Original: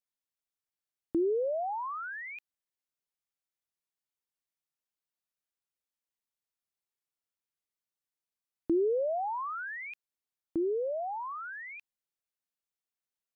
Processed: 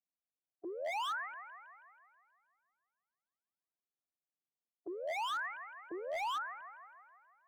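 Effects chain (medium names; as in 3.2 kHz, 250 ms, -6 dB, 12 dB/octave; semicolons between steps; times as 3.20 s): level-controlled noise filter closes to 370 Hz, open at -30.5 dBFS; reverse; compression 12:1, threshold -36 dBFS, peak gain reduction 12 dB; reverse; formant shift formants +3 st; cabinet simulation 170–2300 Hz, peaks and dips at 450 Hz -4 dB, 720 Hz +10 dB, 1.1 kHz +6 dB; time stretch by phase-locked vocoder 0.56×; on a send: feedback echo behind a high-pass 161 ms, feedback 61%, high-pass 1.6 kHz, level -7 dB; on the sum: wavefolder -35 dBFS; trim +2.5 dB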